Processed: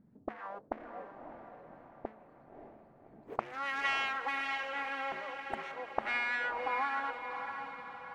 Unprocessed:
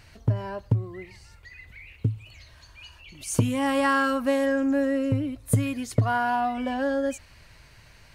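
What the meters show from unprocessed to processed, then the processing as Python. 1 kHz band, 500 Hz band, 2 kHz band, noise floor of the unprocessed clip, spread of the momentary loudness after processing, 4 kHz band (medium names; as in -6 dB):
-7.0 dB, -15.0 dB, -3.5 dB, -53 dBFS, 19 LU, -4.5 dB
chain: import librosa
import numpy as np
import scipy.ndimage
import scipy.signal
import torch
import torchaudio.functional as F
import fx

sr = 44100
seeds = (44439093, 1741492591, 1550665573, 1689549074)

p1 = fx.wiener(x, sr, points=15)
p2 = np.abs(p1)
p3 = fx.auto_wah(p2, sr, base_hz=210.0, top_hz=2000.0, q=2.6, full_db=-21.0, direction='up')
p4 = fx.dynamic_eq(p3, sr, hz=720.0, q=0.75, threshold_db=-52.0, ratio=4.0, max_db=3)
p5 = p4 + fx.echo_diffused(p4, sr, ms=583, feedback_pct=51, wet_db=-6.5, dry=0)
y = p5 * 10.0 ** (1.5 / 20.0)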